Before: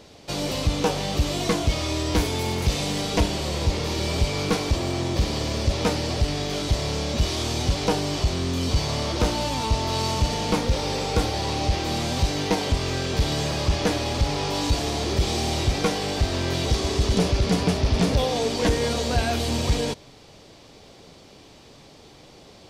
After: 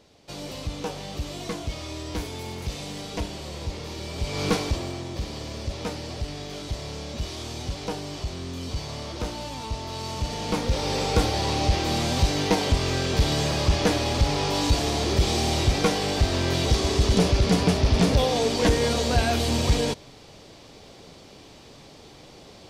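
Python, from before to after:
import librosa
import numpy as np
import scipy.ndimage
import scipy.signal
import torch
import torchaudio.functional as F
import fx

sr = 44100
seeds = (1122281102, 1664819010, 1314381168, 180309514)

y = fx.gain(x, sr, db=fx.line((4.15, -9.0), (4.48, 0.5), (5.04, -8.5), (9.99, -8.5), (11.01, 1.0)))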